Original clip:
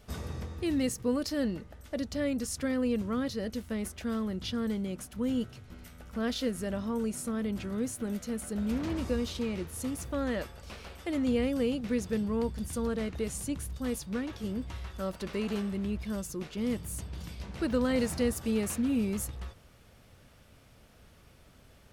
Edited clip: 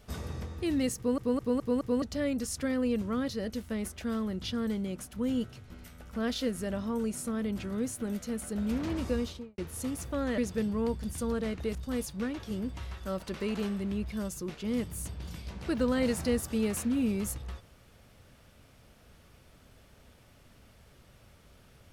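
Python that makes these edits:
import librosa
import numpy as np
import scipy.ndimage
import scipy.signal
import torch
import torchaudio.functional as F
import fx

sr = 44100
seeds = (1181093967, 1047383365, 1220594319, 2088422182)

y = fx.studio_fade_out(x, sr, start_s=9.18, length_s=0.4)
y = fx.edit(y, sr, fx.stutter_over(start_s=0.97, slice_s=0.21, count=5),
    fx.cut(start_s=10.38, length_s=1.55),
    fx.cut(start_s=13.3, length_s=0.38), tone=tone)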